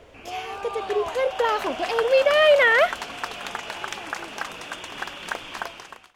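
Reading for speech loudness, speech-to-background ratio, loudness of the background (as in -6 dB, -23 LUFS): -20.0 LUFS, 12.5 dB, -32.5 LUFS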